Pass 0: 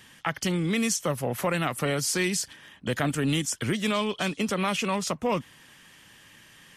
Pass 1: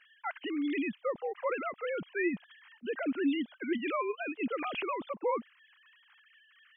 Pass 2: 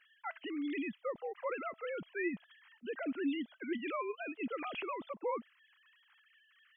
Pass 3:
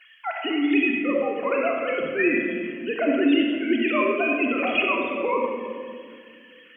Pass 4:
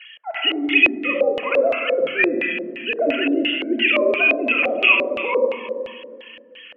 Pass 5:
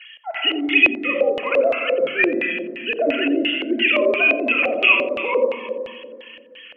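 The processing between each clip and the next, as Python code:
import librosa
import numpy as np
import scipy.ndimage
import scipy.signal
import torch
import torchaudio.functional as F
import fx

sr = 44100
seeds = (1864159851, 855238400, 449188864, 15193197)

y1 = fx.sine_speech(x, sr)
y1 = y1 * librosa.db_to_amplitude(-6.5)
y2 = fx.comb_fb(y1, sr, f0_hz=660.0, decay_s=0.21, harmonics='all', damping=0.0, mix_pct=40)
y2 = y2 * librosa.db_to_amplitude(-1.0)
y3 = fx.graphic_eq_15(y2, sr, hz=(250, 630, 2500), db=(5, 8, 11))
y3 = fx.room_shoebox(y3, sr, seeds[0], volume_m3=3900.0, walls='mixed', distance_m=3.3)
y3 = y3 * librosa.db_to_amplitude(6.0)
y4 = fx.tilt_eq(y3, sr, slope=2.0)
y4 = fx.filter_lfo_lowpass(y4, sr, shape='square', hz=2.9, low_hz=560.0, high_hz=2900.0, q=3.6)
y5 = y4 + 10.0 ** (-18.0 / 20.0) * np.pad(y4, (int(88 * sr / 1000.0), 0))[:len(y4)]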